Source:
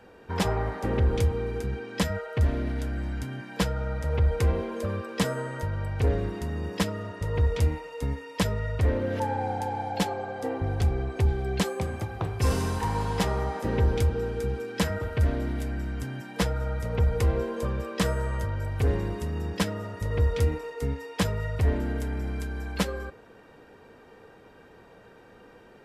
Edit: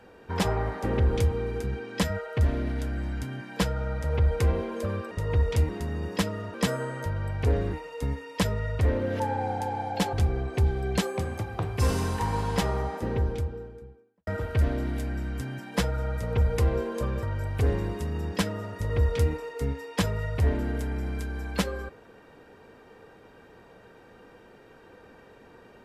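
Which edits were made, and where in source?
0:05.11–0:06.30: swap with 0:07.15–0:07.73
0:10.13–0:10.75: remove
0:13.18–0:14.89: fade out and dull
0:17.85–0:18.44: remove

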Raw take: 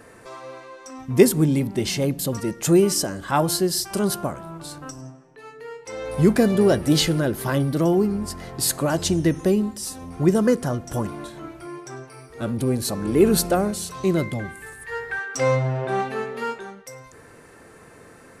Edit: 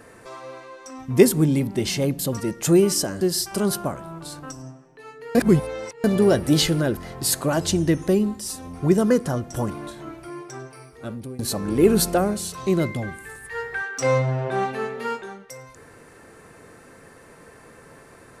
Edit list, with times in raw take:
0:03.21–0:03.60: remove
0:05.74–0:06.43: reverse
0:07.36–0:08.34: remove
0:12.09–0:12.76: fade out linear, to −19.5 dB

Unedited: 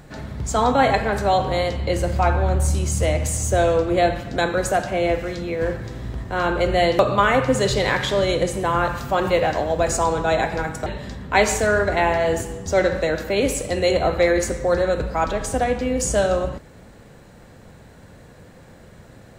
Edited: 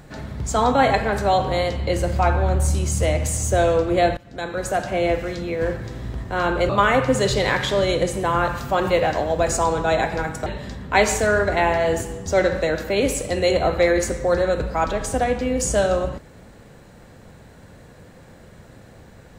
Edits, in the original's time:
0:04.17–0:04.95: fade in, from −20.5 dB
0:06.69–0:07.09: remove

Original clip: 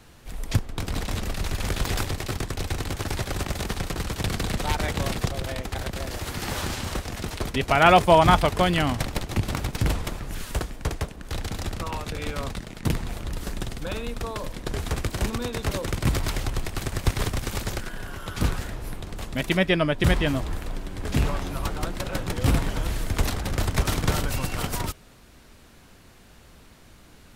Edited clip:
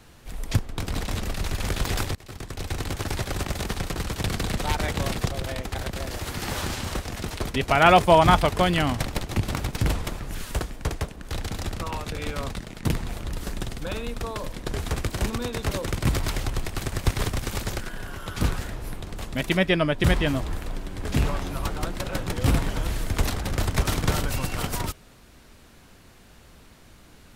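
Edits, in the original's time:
0:02.15–0:02.83: fade in, from −22.5 dB

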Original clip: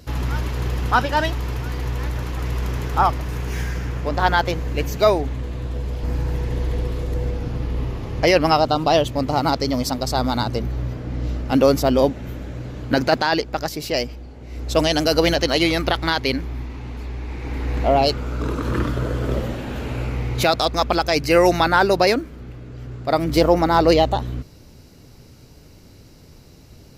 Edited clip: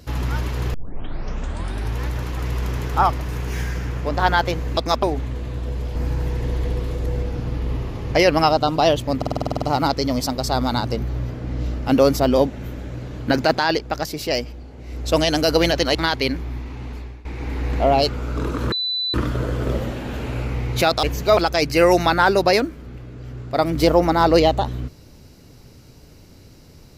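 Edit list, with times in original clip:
0:00.74: tape start 1.26 s
0:04.77–0:05.11: swap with 0:20.65–0:20.91
0:09.25: stutter 0.05 s, 10 plays
0:15.58–0:15.99: remove
0:16.96–0:17.29: fade out, to −18 dB
0:18.76: insert tone 3,990 Hz −20.5 dBFS 0.42 s

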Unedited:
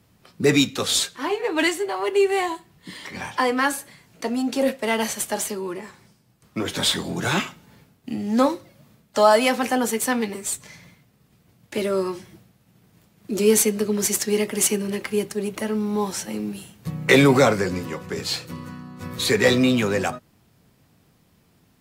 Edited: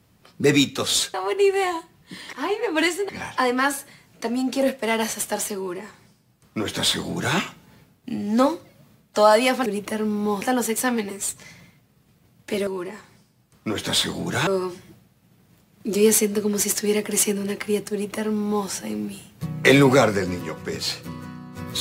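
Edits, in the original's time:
0:01.14–0:01.90: move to 0:03.09
0:05.57–0:07.37: duplicate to 0:11.91
0:15.36–0:16.12: duplicate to 0:09.66

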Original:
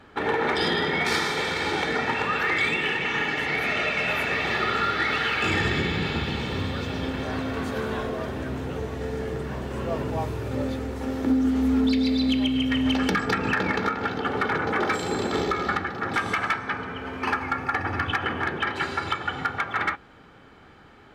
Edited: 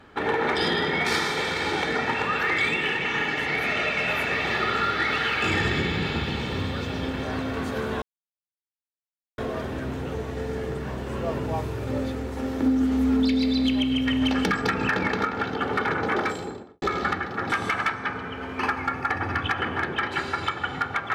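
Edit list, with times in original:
0:08.02: splice in silence 1.36 s
0:14.76–0:15.46: fade out and dull

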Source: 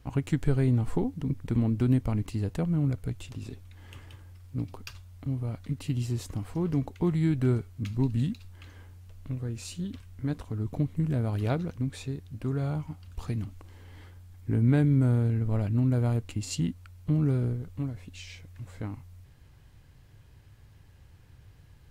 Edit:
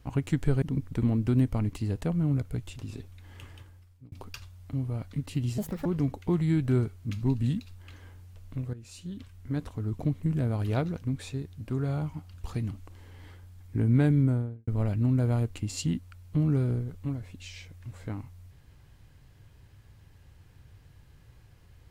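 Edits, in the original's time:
0:00.62–0:01.15: remove
0:04.06–0:04.65: fade out
0:06.11–0:06.59: play speed 175%
0:09.47–0:10.58: fade in equal-power, from −13 dB
0:14.89–0:15.41: fade out and dull

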